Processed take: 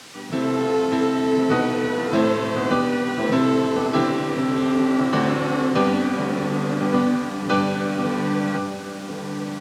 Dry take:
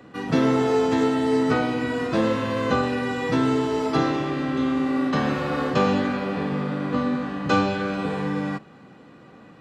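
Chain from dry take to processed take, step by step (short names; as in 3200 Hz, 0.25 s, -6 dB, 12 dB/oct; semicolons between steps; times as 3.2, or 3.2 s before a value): AGC gain up to 11 dB; added noise white -32 dBFS; BPF 120–6100 Hz; outdoor echo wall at 180 m, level -6 dB; gain -6 dB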